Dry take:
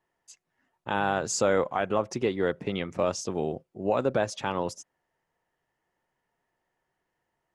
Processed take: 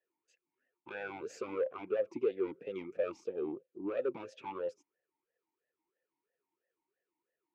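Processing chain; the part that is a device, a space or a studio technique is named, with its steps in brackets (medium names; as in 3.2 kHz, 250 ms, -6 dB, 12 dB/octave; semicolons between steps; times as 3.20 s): talk box (valve stage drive 22 dB, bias 0.5; talking filter e-u 3 Hz); trim +4 dB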